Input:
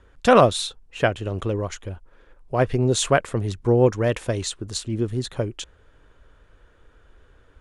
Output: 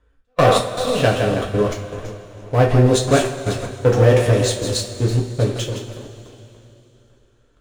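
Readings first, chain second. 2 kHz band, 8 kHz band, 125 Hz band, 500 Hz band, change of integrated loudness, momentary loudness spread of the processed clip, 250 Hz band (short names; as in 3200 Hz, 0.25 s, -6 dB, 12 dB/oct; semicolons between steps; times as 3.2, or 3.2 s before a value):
+2.5 dB, +3.0 dB, +7.5 dB, +4.0 dB, +4.0 dB, 16 LU, +3.5 dB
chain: split-band echo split 500 Hz, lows 0.287 s, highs 0.164 s, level -9 dB; sample leveller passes 3; step gate "xx..xx..xxxxxxx." 156 bpm -60 dB; harmonic-percussive split harmonic +5 dB; two-slope reverb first 0.27 s, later 3.3 s, from -19 dB, DRR -1.5 dB; gain -9.5 dB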